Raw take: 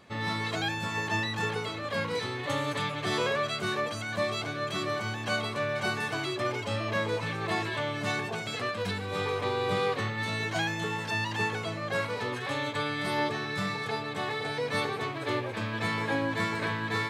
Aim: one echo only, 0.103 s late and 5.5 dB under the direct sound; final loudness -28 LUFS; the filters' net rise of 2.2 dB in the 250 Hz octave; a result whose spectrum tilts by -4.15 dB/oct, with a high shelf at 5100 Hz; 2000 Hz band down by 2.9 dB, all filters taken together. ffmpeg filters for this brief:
-af "equalizer=f=250:t=o:g=3,equalizer=f=2k:t=o:g=-5,highshelf=f=5.1k:g=9,aecho=1:1:103:0.531,volume=1.5dB"

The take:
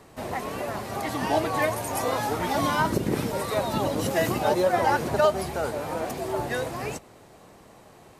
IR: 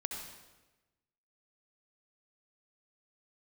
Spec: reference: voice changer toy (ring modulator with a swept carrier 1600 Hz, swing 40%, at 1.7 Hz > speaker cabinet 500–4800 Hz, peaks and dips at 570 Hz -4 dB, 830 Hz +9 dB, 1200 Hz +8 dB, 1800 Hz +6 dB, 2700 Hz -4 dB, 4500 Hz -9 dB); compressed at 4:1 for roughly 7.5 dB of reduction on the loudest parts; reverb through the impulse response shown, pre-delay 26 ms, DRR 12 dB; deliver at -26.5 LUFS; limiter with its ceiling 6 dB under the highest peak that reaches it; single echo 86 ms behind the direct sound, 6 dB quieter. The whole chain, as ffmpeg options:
-filter_complex "[0:a]acompressor=threshold=-26dB:ratio=4,alimiter=limit=-21.5dB:level=0:latency=1,aecho=1:1:86:0.501,asplit=2[a][b];[1:a]atrim=start_sample=2205,adelay=26[c];[b][c]afir=irnorm=-1:irlink=0,volume=-13dB[d];[a][d]amix=inputs=2:normalize=0,aeval=exprs='val(0)*sin(2*PI*1600*n/s+1600*0.4/1.7*sin(2*PI*1.7*n/s))':c=same,highpass=500,equalizer=f=570:t=q:w=4:g=-4,equalizer=f=830:t=q:w=4:g=9,equalizer=f=1.2k:t=q:w=4:g=8,equalizer=f=1.8k:t=q:w=4:g=6,equalizer=f=2.7k:t=q:w=4:g=-4,equalizer=f=4.5k:t=q:w=4:g=-9,lowpass=f=4.8k:w=0.5412,lowpass=f=4.8k:w=1.3066,volume=2dB"

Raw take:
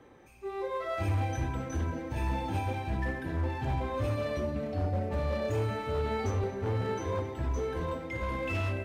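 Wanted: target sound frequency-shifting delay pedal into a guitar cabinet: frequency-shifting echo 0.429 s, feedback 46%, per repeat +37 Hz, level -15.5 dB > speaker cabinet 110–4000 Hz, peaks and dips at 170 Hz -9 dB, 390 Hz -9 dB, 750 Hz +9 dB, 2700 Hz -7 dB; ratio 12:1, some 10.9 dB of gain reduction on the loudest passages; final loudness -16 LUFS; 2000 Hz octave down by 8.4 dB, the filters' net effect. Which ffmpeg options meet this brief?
-filter_complex "[0:a]equalizer=f=2k:t=o:g=-8.5,acompressor=threshold=-38dB:ratio=12,asplit=5[a][b][c][d][e];[b]adelay=429,afreqshift=37,volume=-15.5dB[f];[c]adelay=858,afreqshift=74,volume=-22.2dB[g];[d]adelay=1287,afreqshift=111,volume=-29dB[h];[e]adelay=1716,afreqshift=148,volume=-35.7dB[i];[a][f][g][h][i]amix=inputs=5:normalize=0,highpass=110,equalizer=f=170:t=q:w=4:g=-9,equalizer=f=390:t=q:w=4:g=-9,equalizer=f=750:t=q:w=4:g=9,equalizer=f=2.7k:t=q:w=4:g=-7,lowpass=f=4k:w=0.5412,lowpass=f=4k:w=1.3066,volume=27.5dB"

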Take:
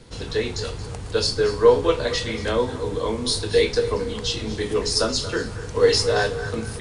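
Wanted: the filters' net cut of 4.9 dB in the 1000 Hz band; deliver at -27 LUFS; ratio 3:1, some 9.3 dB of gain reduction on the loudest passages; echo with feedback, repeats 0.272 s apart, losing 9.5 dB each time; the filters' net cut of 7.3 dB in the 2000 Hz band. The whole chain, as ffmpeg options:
-af "equalizer=f=1k:t=o:g=-4,equalizer=f=2k:t=o:g=-8.5,acompressor=threshold=-24dB:ratio=3,aecho=1:1:272|544|816|1088:0.335|0.111|0.0365|0.012,volume=1dB"

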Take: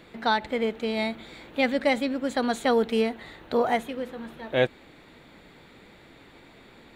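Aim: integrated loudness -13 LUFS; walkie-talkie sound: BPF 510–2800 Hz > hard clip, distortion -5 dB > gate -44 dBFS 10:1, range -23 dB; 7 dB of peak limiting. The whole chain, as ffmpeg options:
-af "alimiter=limit=-18dB:level=0:latency=1,highpass=510,lowpass=2.8k,asoftclip=type=hard:threshold=-35dB,agate=range=-23dB:threshold=-44dB:ratio=10,volume=26.5dB"

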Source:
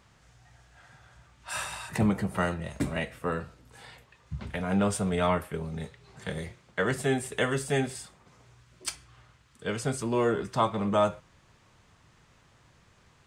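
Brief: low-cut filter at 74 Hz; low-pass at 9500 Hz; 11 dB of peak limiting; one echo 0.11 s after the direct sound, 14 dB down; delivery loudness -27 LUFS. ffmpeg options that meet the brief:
-af "highpass=74,lowpass=9.5k,alimiter=limit=-21.5dB:level=0:latency=1,aecho=1:1:110:0.2,volume=6.5dB"

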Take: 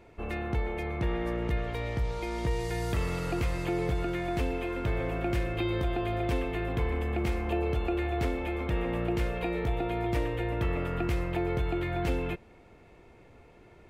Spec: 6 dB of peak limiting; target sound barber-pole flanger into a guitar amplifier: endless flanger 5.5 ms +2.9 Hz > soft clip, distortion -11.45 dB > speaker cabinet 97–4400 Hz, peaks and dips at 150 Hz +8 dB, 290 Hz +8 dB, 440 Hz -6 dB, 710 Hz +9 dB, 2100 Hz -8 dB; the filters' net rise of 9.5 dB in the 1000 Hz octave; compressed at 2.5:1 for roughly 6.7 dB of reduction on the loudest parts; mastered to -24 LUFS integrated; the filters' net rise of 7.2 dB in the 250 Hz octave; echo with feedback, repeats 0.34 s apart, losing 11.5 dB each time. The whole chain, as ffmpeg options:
-filter_complex "[0:a]equalizer=f=250:t=o:g=6.5,equalizer=f=1k:t=o:g=4.5,acompressor=threshold=-33dB:ratio=2.5,alimiter=level_in=3.5dB:limit=-24dB:level=0:latency=1,volume=-3.5dB,aecho=1:1:340|680|1020:0.266|0.0718|0.0194,asplit=2[a][b];[b]adelay=5.5,afreqshift=2.9[c];[a][c]amix=inputs=2:normalize=1,asoftclip=threshold=-38dB,highpass=97,equalizer=f=150:t=q:w=4:g=8,equalizer=f=290:t=q:w=4:g=8,equalizer=f=440:t=q:w=4:g=-6,equalizer=f=710:t=q:w=4:g=9,equalizer=f=2.1k:t=q:w=4:g=-8,lowpass=f=4.4k:w=0.5412,lowpass=f=4.4k:w=1.3066,volume=17dB"

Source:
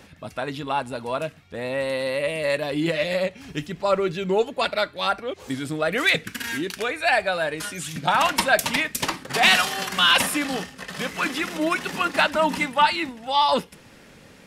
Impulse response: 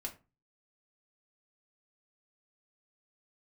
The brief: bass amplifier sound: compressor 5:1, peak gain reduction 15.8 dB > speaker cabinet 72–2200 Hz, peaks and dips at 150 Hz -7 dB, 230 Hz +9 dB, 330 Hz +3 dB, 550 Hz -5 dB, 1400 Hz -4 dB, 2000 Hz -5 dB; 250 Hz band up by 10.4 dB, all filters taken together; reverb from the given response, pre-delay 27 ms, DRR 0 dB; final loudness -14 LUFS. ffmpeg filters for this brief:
-filter_complex "[0:a]equalizer=f=250:t=o:g=8,asplit=2[a][b];[1:a]atrim=start_sample=2205,adelay=27[c];[b][c]afir=irnorm=-1:irlink=0,volume=1.5dB[d];[a][d]amix=inputs=2:normalize=0,acompressor=threshold=-26dB:ratio=5,highpass=f=72:w=0.5412,highpass=f=72:w=1.3066,equalizer=f=150:t=q:w=4:g=-7,equalizer=f=230:t=q:w=4:g=9,equalizer=f=330:t=q:w=4:g=3,equalizer=f=550:t=q:w=4:g=-5,equalizer=f=1.4k:t=q:w=4:g=-4,equalizer=f=2k:t=q:w=4:g=-5,lowpass=f=2.2k:w=0.5412,lowpass=f=2.2k:w=1.3066,volume=14.5dB"

